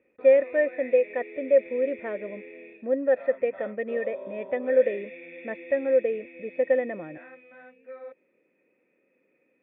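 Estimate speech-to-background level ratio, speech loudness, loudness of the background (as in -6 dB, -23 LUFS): 17.0 dB, -25.5 LUFS, -42.5 LUFS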